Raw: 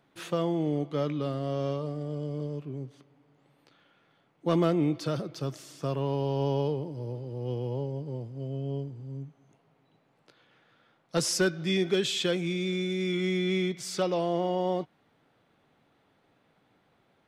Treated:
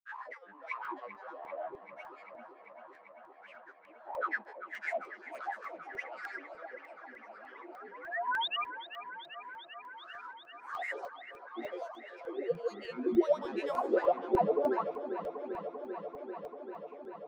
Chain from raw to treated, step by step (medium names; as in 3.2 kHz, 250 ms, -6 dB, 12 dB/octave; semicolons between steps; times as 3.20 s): reverse spectral sustain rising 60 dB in 1.97 s; slow attack 545 ms; tone controls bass -12 dB, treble +1 dB; inverted gate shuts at -15 dBFS, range -24 dB; level rider gain up to 12 dB; wah-wah 1.5 Hz 270–1600 Hz, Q 14; painted sound rise, 7.29–8.55 s, 230–2000 Hz -37 dBFS; high-pass sweep 1.4 kHz -> 280 Hz, 10.09–13.68 s; granulator, pitch spread up and down by 12 st; bass shelf 170 Hz -9 dB; feedback echo behind a low-pass 392 ms, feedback 82%, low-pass 3.5 kHz, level -11.5 dB; crackling interface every 0.30 s, samples 64, zero, from 0.85 s